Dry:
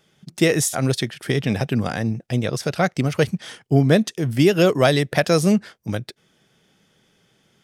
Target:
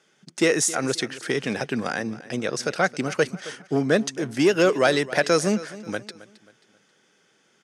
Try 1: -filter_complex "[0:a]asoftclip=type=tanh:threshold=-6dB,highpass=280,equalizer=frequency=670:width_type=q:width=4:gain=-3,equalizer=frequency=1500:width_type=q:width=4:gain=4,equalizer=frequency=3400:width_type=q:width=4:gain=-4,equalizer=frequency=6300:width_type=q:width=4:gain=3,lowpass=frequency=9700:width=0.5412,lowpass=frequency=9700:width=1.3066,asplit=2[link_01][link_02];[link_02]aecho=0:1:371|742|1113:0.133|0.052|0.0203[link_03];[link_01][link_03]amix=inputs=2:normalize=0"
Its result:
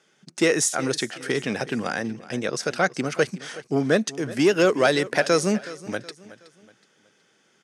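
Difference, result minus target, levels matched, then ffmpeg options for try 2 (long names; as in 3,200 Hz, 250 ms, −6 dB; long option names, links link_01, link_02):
echo 103 ms late
-filter_complex "[0:a]asoftclip=type=tanh:threshold=-6dB,highpass=280,equalizer=frequency=670:width_type=q:width=4:gain=-3,equalizer=frequency=1500:width_type=q:width=4:gain=4,equalizer=frequency=3400:width_type=q:width=4:gain=-4,equalizer=frequency=6300:width_type=q:width=4:gain=3,lowpass=frequency=9700:width=0.5412,lowpass=frequency=9700:width=1.3066,asplit=2[link_01][link_02];[link_02]aecho=0:1:268|536|804:0.133|0.052|0.0203[link_03];[link_01][link_03]amix=inputs=2:normalize=0"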